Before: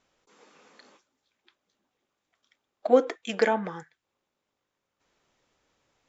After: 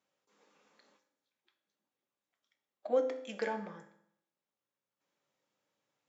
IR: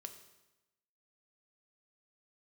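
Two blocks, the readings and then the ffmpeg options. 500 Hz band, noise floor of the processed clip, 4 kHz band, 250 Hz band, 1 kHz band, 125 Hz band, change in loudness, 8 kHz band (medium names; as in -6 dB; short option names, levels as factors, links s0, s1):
-9.5 dB, under -85 dBFS, -12.5 dB, -12.5 dB, -12.0 dB, under -10 dB, -9.5 dB, no reading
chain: -filter_complex "[0:a]highpass=f=120:w=0.5412,highpass=f=120:w=1.3066[s0];[1:a]atrim=start_sample=2205,asetrate=61740,aresample=44100[s1];[s0][s1]afir=irnorm=-1:irlink=0,volume=0.631"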